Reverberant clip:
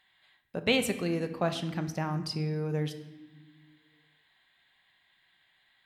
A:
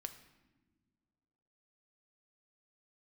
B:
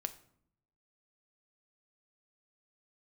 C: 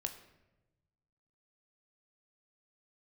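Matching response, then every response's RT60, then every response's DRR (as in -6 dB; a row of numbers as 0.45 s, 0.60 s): A; no single decay rate, 0.65 s, 1.0 s; 8.0 dB, 9.0 dB, 5.0 dB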